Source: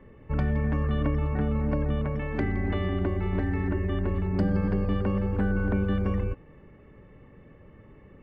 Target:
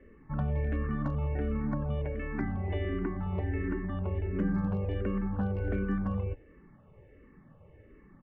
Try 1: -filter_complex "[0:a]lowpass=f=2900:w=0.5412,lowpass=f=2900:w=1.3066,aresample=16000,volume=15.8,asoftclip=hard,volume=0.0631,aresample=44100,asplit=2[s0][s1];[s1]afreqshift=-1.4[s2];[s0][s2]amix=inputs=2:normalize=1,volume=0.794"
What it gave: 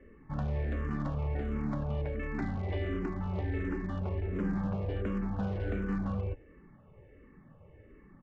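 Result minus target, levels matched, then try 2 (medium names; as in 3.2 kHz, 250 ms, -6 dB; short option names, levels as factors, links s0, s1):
overload inside the chain: distortion +19 dB
-filter_complex "[0:a]lowpass=f=2900:w=0.5412,lowpass=f=2900:w=1.3066,aresample=16000,volume=7.08,asoftclip=hard,volume=0.141,aresample=44100,asplit=2[s0][s1];[s1]afreqshift=-1.4[s2];[s0][s2]amix=inputs=2:normalize=1,volume=0.794"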